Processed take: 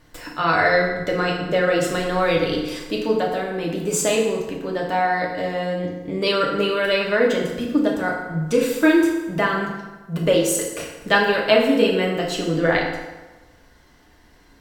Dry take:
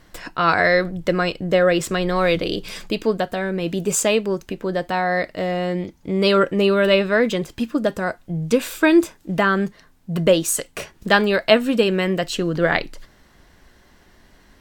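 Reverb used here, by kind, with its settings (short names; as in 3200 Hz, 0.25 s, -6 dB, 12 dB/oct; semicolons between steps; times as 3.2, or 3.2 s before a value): FDN reverb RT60 1.2 s, low-frequency decay 0.9×, high-frequency decay 0.7×, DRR -2 dB; gain -4.5 dB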